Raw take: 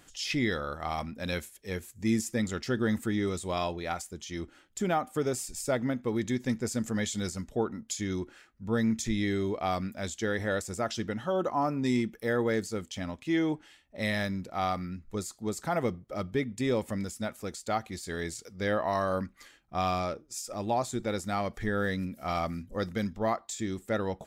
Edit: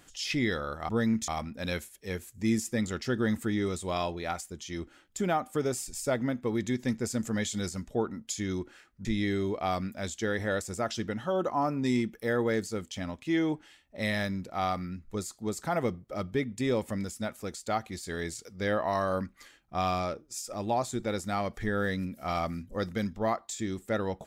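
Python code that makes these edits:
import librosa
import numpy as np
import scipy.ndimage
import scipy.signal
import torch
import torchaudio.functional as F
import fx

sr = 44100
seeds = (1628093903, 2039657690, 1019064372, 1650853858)

y = fx.edit(x, sr, fx.move(start_s=8.66, length_s=0.39, to_s=0.89), tone=tone)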